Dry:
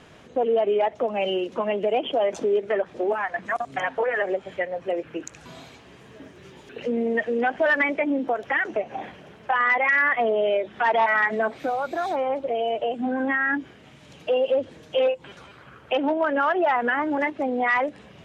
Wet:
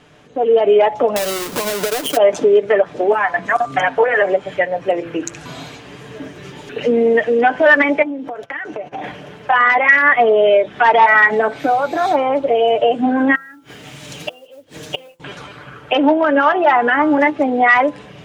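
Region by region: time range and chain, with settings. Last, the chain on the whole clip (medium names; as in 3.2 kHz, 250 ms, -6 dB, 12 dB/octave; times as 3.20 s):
1.16–2.17 s: square wave that keeps the level + treble shelf 5 kHz +7.5 dB + compression 16:1, threshold -27 dBFS
8.02–9.04 s: gate -40 dBFS, range -24 dB + compression, threshold -34 dBFS
13.35–15.20 s: treble shelf 4 kHz +11.5 dB + modulation noise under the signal 23 dB + inverted gate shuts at -20 dBFS, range -29 dB
whole clip: comb 6.8 ms, depth 42%; de-hum 169.4 Hz, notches 9; level rider gain up to 11.5 dB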